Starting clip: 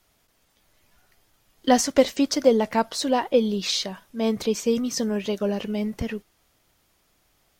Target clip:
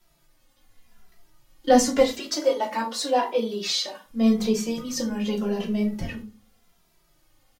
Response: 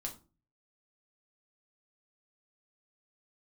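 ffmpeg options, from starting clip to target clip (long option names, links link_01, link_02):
-filter_complex "[0:a]asplit=3[link_01][link_02][link_03];[link_01]afade=type=out:start_time=1.99:duration=0.02[link_04];[link_02]highpass=370,afade=type=in:start_time=1.99:duration=0.02,afade=type=out:start_time=4.04:duration=0.02[link_05];[link_03]afade=type=in:start_time=4.04:duration=0.02[link_06];[link_04][link_05][link_06]amix=inputs=3:normalize=0[link_07];[1:a]atrim=start_sample=2205[link_08];[link_07][link_08]afir=irnorm=-1:irlink=0,asplit=2[link_09][link_10];[link_10]adelay=2.6,afreqshift=-0.87[link_11];[link_09][link_11]amix=inputs=2:normalize=1,volume=4dB"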